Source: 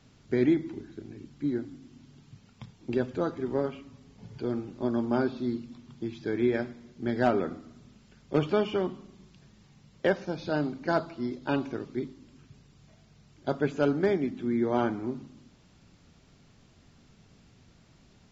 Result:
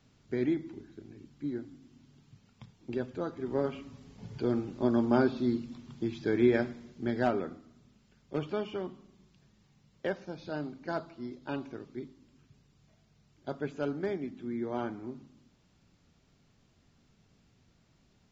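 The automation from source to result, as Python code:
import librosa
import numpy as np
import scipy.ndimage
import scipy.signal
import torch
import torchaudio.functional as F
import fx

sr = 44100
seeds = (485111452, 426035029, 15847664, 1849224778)

y = fx.gain(x, sr, db=fx.line((3.32, -6.0), (3.8, 1.5), (6.76, 1.5), (7.65, -8.0)))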